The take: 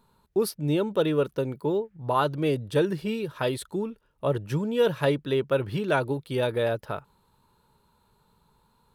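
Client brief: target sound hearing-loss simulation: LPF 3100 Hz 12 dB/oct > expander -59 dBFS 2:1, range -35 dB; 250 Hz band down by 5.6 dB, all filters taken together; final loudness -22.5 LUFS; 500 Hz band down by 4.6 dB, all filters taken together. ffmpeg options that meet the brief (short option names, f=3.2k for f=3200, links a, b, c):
-af "lowpass=3.1k,equalizer=f=250:t=o:g=-7,equalizer=f=500:t=o:g=-3.5,agate=range=-35dB:threshold=-59dB:ratio=2,volume=8.5dB"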